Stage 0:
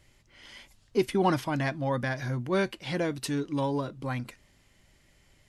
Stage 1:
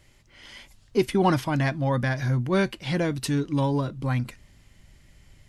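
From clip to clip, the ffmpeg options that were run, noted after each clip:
ffmpeg -i in.wav -af "asubboost=boost=2:cutoff=250,volume=3.5dB" out.wav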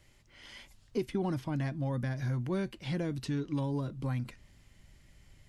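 ffmpeg -i in.wav -filter_complex "[0:a]acrossover=split=450|6800[link_01][link_02][link_03];[link_01]acompressor=threshold=-25dB:ratio=4[link_04];[link_02]acompressor=threshold=-38dB:ratio=4[link_05];[link_03]acompressor=threshold=-59dB:ratio=4[link_06];[link_04][link_05][link_06]amix=inputs=3:normalize=0,volume=-5dB" out.wav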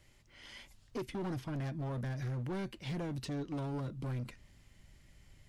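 ffmpeg -i in.wav -af "asoftclip=type=hard:threshold=-33dB,volume=-1.5dB" out.wav

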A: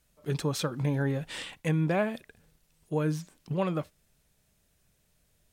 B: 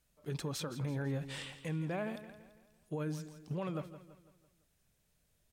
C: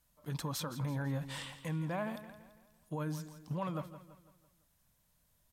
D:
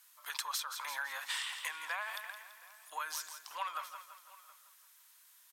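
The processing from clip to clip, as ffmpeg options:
ffmpeg -i in.wav -af "alimiter=level_in=0.5dB:limit=-24dB:level=0:latency=1,volume=-0.5dB,aecho=1:1:167|334|501|668|835:0.224|0.103|0.0474|0.0218|0.01,volume=-6dB" out.wav
ffmpeg -i in.wav -af "equalizer=frequency=400:width_type=o:width=0.33:gain=-11,equalizer=frequency=1000:width_type=o:width=0.33:gain=8,equalizer=frequency=2500:width_type=o:width=0.33:gain=-4,equalizer=frequency=12500:width_type=o:width=0.33:gain=8,volume=1dB" out.wav
ffmpeg -i in.wav -af "highpass=frequency=1100:width=0.5412,highpass=frequency=1100:width=1.3066,acompressor=threshold=-48dB:ratio=10,aecho=1:1:721:0.0891,volume=13.5dB" out.wav

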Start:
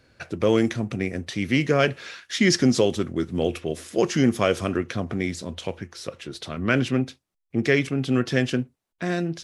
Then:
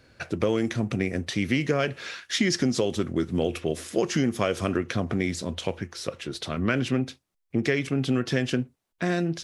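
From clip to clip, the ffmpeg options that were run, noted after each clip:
ffmpeg -i in.wav -af "acompressor=threshold=-22dB:ratio=6,volume=2dB" out.wav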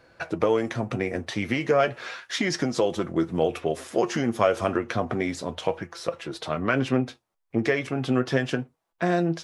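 ffmpeg -i in.wav -af "equalizer=frequency=840:width_type=o:width=2:gain=11.5,flanger=delay=5.9:depth=3.1:regen=55:speed=0.33:shape=sinusoidal" out.wav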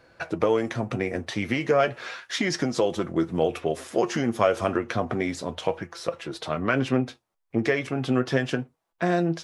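ffmpeg -i in.wav -af anull out.wav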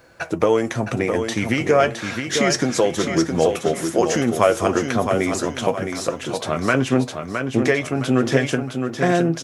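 ffmpeg -i in.wav -filter_complex "[0:a]aexciter=amount=2.1:drive=6.6:freq=6100,asplit=2[link_01][link_02];[link_02]aecho=0:1:664|1328|1992|2656:0.473|0.175|0.0648|0.024[link_03];[link_01][link_03]amix=inputs=2:normalize=0,volume=5dB" out.wav

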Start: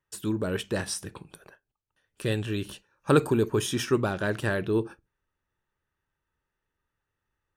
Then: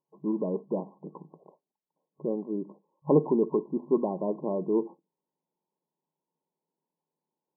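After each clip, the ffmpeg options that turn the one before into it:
ffmpeg -i in.wav -af "afftfilt=real='re*between(b*sr/4096,150,1100)':imag='im*between(b*sr/4096,150,1100)':win_size=4096:overlap=0.75" out.wav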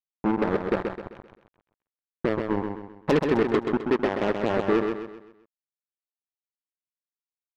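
ffmpeg -i in.wav -filter_complex "[0:a]acompressor=threshold=-32dB:ratio=2.5,acrusher=bits=4:mix=0:aa=0.5,asplit=2[link_01][link_02];[link_02]aecho=0:1:130|260|390|520|650:0.531|0.212|0.0849|0.034|0.0136[link_03];[link_01][link_03]amix=inputs=2:normalize=0,volume=8.5dB" out.wav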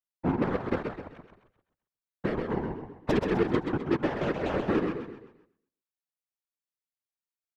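ffmpeg -i in.wav -af "afreqshift=-32,aecho=1:1:120|240|360:0.158|0.0523|0.0173,afftfilt=real='hypot(re,im)*cos(2*PI*random(0))':imag='hypot(re,im)*sin(2*PI*random(1))':win_size=512:overlap=0.75,volume=2dB" out.wav

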